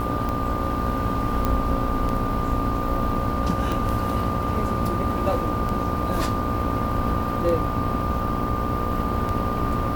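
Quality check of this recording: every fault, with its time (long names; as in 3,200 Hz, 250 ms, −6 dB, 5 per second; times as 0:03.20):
mains buzz 60 Hz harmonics 19 −29 dBFS
scratch tick 33 1/3 rpm −15 dBFS
whistle 1,200 Hz −28 dBFS
0:01.45: click −10 dBFS
0:03.72: click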